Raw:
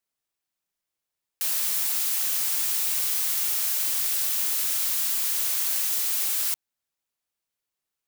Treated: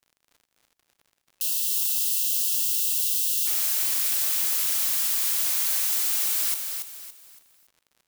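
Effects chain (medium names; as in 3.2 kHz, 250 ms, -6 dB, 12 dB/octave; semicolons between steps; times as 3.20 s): spectral selection erased 1.25–3.46 s, 550–2600 Hz; crackle 56 per s -44 dBFS; feedback delay 282 ms, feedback 34%, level -6 dB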